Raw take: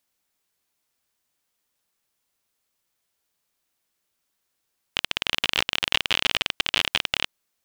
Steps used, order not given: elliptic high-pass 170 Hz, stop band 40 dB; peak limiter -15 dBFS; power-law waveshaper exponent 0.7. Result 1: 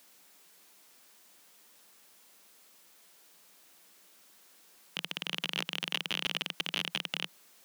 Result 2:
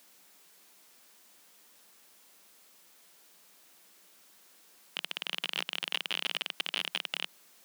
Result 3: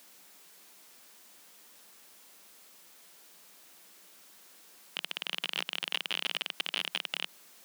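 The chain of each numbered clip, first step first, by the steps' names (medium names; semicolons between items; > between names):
peak limiter > elliptic high-pass > power-law waveshaper; peak limiter > power-law waveshaper > elliptic high-pass; power-law waveshaper > peak limiter > elliptic high-pass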